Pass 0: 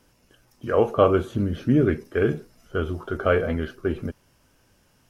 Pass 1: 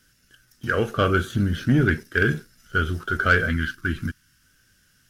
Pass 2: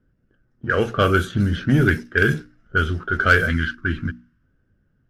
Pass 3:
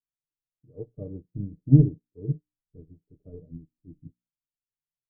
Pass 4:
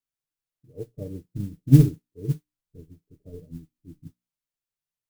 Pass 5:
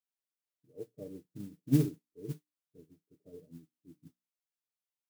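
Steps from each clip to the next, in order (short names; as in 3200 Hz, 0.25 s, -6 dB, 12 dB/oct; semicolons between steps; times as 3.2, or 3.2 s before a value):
EQ curve 170 Hz 0 dB, 960 Hz -15 dB, 1500 Hz +10 dB, 2400 Hz 0 dB, 3400 Hz +6 dB; sample leveller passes 1; spectral gain 3.5–4.43, 350–940 Hz -12 dB
notches 60/120/180/240/300 Hz; low-pass opened by the level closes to 590 Hz, open at -16 dBFS; high shelf 8900 Hz +8 dB; gain +3 dB
Gaussian blur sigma 19 samples; comb 6.7 ms, depth 76%; upward expander 2.5:1, over -40 dBFS; gain +1 dB
modulation noise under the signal 27 dB; gain +2 dB
HPF 220 Hz 12 dB/oct; gain -6.5 dB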